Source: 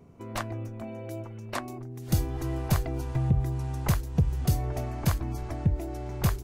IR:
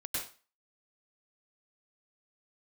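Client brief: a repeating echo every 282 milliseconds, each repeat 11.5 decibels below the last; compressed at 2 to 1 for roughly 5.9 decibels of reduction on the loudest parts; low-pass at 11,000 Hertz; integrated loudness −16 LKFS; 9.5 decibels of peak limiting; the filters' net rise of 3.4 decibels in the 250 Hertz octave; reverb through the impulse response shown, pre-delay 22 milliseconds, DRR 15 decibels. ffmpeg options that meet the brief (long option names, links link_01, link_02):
-filter_complex "[0:a]lowpass=11000,equalizer=frequency=250:width_type=o:gain=5.5,acompressor=threshold=-29dB:ratio=2,alimiter=level_in=2dB:limit=-24dB:level=0:latency=1,volume=-2dB,aecho=1:1:282|564|846:0.266|0.0718|0.0194,asplit=2[link_01][link_02];[1:a]atrim=start_sample=2205,adelay=22[link_03];[link_02][link_03]afir=irnorm=-1:irlink=0,volume=-17.5dB[link_04];[link_01][link_04]amix=inputs=2:normalize=0,volume=18.5dB"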